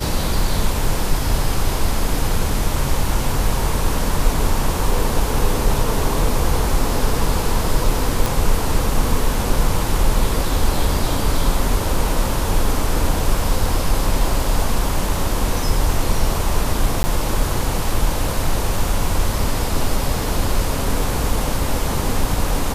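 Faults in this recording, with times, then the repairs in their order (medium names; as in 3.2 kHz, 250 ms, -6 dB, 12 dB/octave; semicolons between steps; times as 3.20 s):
8.26 s: pop
17.03–17.04 s: dropout 10 ms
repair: de-click; interpolate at 17.03 s, 10 ms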